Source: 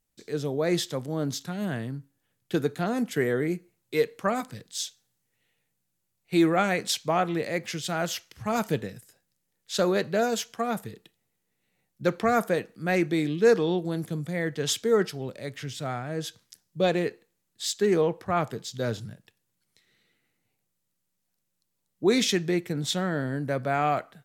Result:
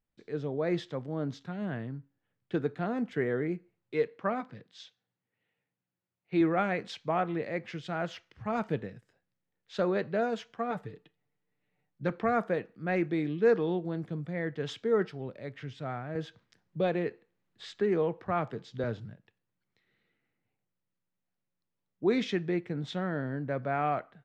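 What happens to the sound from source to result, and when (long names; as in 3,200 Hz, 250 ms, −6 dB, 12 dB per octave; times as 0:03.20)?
0:04.08–0:06.41: band-pass filter 110–5,600 Hz
0:10.70–0:12.10: comb filter 6.8 ms, depth 56%
0:16.15–0:18.84: multiband upward and downward compressor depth 40%
whole clip: low-pass filter 2,400 Hz 12 dB per octave; level −4.5 dB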